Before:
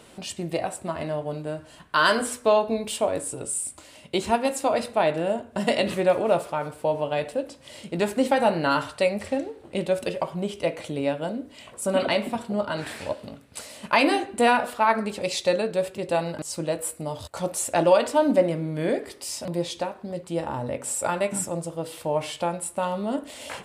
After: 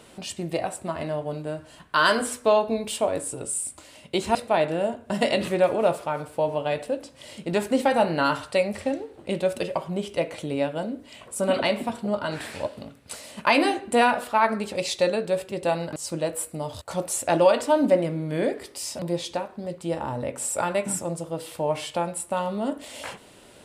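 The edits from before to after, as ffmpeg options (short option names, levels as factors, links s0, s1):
-filter_complex "[0:a]asplit=2[s0][s1];[s0]atrim=end=4.352[s2];[s1]atrim=start=4.808[s3];[s2][s3]acrossfade=d=0.004:c1=hsin:c2=hsin"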